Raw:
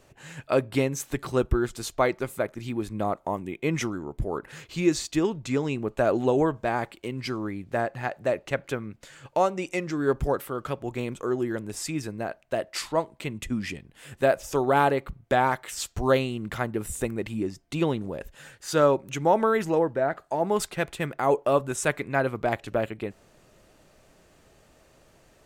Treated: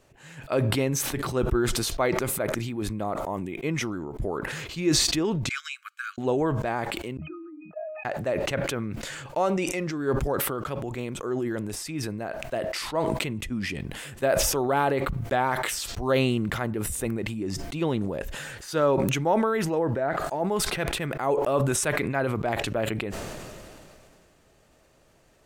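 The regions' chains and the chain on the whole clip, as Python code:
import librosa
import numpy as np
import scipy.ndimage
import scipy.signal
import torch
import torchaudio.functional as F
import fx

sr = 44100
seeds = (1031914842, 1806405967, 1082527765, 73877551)

y = fx.chain(x, sr, fx.brickwall_highpass(low_hz=1100.0),
    fx.comb(ms=1.3, depth=0.6),
    fx.upward_expand(threshold_db=-53.0, expansion=2.5), at=(5.49, 6.18))
y = fx.chain(y, sr, fx.sine_speech(),
    fx.octave_resonator(note='D#', decay_s=0.24),
    fx.band_widen(depth_pct=70), at=(7.17, 8.05))
y = fx.dynamic_eq(y, sr, hz=7200.0, q=4.0, threshold_db=-54.0, ratio=4.0, max_db=-6)
y = fx.sustainer(y, sr, db_per_s=23.0)
y = F.gain(torch.from_numpy(y), -3.0).numpy()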